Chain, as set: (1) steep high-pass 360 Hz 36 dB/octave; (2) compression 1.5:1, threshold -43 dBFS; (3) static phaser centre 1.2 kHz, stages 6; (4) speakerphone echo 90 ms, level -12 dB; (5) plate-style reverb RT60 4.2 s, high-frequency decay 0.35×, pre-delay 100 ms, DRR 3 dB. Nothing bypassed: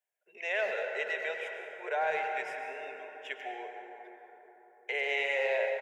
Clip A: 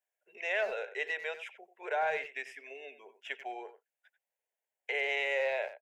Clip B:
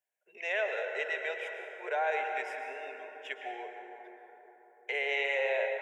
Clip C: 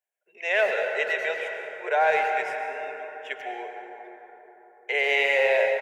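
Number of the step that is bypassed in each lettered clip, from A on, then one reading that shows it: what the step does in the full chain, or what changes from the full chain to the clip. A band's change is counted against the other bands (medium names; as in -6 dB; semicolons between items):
5, momentary loudness spread change +1 LU; 4, momentary loudness spread change +2 LU; 2, mean gain reduction 6.0 dB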